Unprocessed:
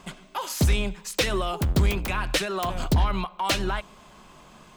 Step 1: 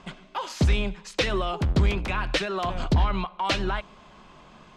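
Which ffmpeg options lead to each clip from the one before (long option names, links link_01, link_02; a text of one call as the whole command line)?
ffmpeg -i in.wav -af "lowpass=4700" out.wav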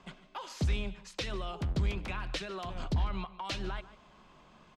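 ffmpeg -i in.wav -filter_complex "[0:a]aecho=1:1:148:0.106,acrossover=split=210|3000[link_01][link_02][link_03];[link_02]acompressor=threshold=-29dB:ratio=6[link_04];[link_01][link_04][link_03]amix=inputs=3:normalize=0,volume=-8.5dB" out.wav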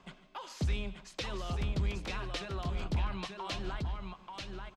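ffmpeg -i in.wav -af "aecho=1:1:887:0.596,volume=-2dB" out.wav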